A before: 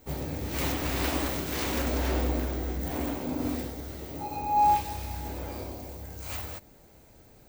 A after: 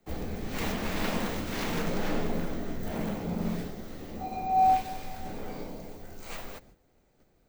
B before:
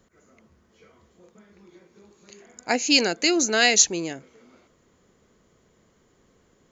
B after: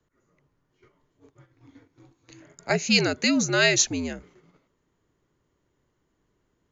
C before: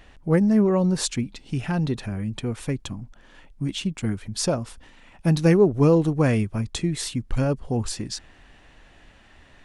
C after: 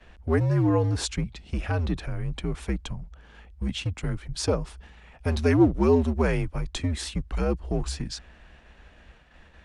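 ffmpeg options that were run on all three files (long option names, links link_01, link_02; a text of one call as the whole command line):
ffmpeg -i in.wav -filter_complex "[0:a]agate=range=-10dB:threshold=-52dB:ratio=16:detection=peak,highshelf=frequency=6200:gain=-9.5,acrossover=split=300[link_01][link_02];[link_01]asoftclip=type=hard:threshold=-25dB[link_03];[link_03][link_02]amix=inputs=2:normalize=0,afreqshift=-77" out.wav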